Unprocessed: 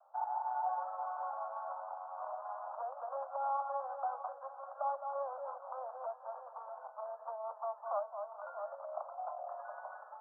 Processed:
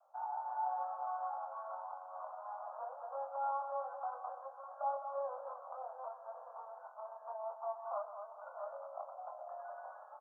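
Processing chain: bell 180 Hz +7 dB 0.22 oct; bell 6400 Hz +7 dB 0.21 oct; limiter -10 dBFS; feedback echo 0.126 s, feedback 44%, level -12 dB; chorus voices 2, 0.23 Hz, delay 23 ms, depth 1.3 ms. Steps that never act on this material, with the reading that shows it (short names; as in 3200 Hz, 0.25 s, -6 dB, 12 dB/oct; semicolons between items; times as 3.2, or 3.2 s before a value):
bell 180 Hz: input band starts at 450 Hz; bell 6400 Hz: input band ends at 1500 Hz; limiter -10 dBFS: input peak -25.0 dBFS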